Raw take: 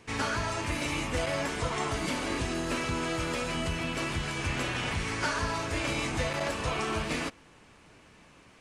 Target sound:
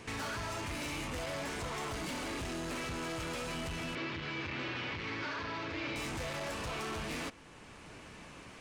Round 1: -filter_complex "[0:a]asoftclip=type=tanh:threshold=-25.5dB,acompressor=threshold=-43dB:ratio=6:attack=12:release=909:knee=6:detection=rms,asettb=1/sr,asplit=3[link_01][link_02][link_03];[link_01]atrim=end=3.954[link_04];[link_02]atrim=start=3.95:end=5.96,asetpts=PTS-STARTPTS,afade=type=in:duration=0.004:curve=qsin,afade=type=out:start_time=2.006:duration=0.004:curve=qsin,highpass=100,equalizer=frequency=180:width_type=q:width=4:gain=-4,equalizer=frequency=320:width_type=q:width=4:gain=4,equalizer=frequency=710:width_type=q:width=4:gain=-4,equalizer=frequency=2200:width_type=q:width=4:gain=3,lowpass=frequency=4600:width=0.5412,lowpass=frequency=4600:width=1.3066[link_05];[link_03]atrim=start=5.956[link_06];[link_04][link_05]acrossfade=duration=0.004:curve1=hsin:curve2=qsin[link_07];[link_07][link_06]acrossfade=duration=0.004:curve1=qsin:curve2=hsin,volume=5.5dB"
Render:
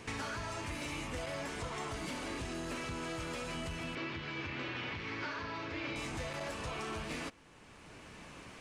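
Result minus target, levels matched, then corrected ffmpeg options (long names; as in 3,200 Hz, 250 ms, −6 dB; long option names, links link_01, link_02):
soft clipping: distortion −9 dB
-filter_complex "[0:a]asoftclip=type=tanh:threshold=-35dB,acompressor=threshold=-43dB:ratio=6:attack=12:release=909:knee=6:detection=rms,asettb=1/sr,asplit=3[link_01][link_02][link_03];[link_01]atrim=end=3.954[link_04];[link_02]atrim=start=3.95:end=5.96,asetpts=PTS-STARTPTS,afade=type=in:duration=0.004:curve=qsin,afade=type=out:start_time=2.006:duration=0.004:curve=qsin,highpass=100,equalizer=frequency=180:width_type=q:width=4:gain=-4,equalizer=frequency=320:width_type=q:width=4:gain=4,equalizer=frequency=710:width_type=q:width=4:gain=-4,equalizer=frequency=2200:width_type=q:width=4:gain=3,lowpass=frequency=4600:width=0.5412,lowpass=frequency=4600:width=1.3066[link_05];[link_03]atrim=start=5.956[link_06];[link_04][link_05]acrossfade=duration=0.004:curve1=hsin:curve2=qsin[link_07];[link_07][link_06]acrossfade=duration=0.004:curve1=qsin:curve2=hsin,volume=5.5dB"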